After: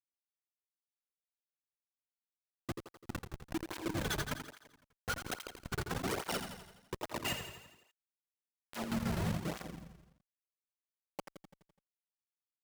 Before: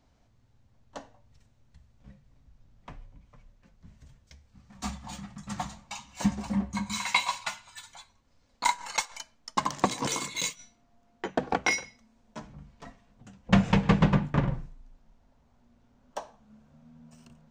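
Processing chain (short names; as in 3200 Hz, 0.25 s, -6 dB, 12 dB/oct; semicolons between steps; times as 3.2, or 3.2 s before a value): speed glide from 191% -> 86%; Schmitt trigger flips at -26.5 dBFS; on a send: feedback echo 84 ms, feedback 57%, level -7.5 dB; on the sum: tape flanging out of phase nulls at 1.2 Hz, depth 4.2 ms; gain +1 dB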